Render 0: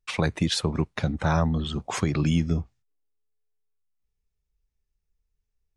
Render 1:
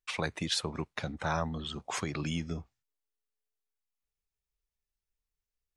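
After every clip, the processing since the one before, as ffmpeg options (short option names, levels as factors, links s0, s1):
-af "lowshelf=f=360:g=-10,volume=0.631"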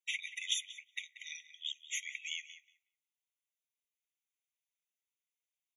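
-filter_complex "[0:a]asplit=2[s0][s1];[s1]adelay=184,lowpass=f=970:p=1,volume=0.562,asplit=2[s2][s3];[s3]adelay=184,lowpass=f=970:p=1,volume=0.3,asplit=2[s4][s5];[s5]adelay=184,lowpass=f=970:p=1,volume=0.3,asplit=2[s6][s7];[s7]adelay=184,lowpass=f=970:p=1,volume=0.3[s8];[s2][s4][s6][s8]amix=inputs=4:normalize=0[s9];[s0][s9]amix=inputs=2:normalize=0,afftfilt=real='re*eq(mod(floor(b*sr/1024/1900),2),1)':imag='im*eq(mod(floor(b*sr/1024/1900),2),1)':win_size=1024:overlap=0.75,volume=1.19"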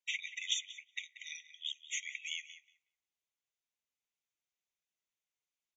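-af "aresample=16000,aresample=44100"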